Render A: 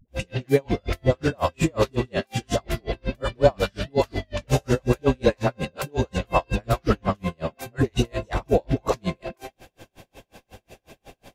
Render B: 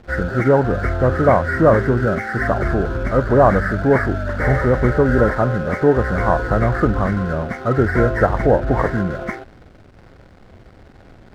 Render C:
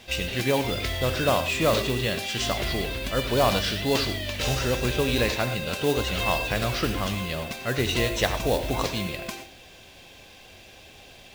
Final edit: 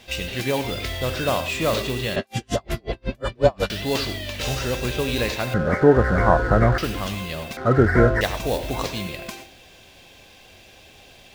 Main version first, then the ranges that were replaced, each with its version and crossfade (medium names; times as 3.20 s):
C
2.16–3.70 s: from A
5.54–6.78 s: from B
7.57–8.21 s: from B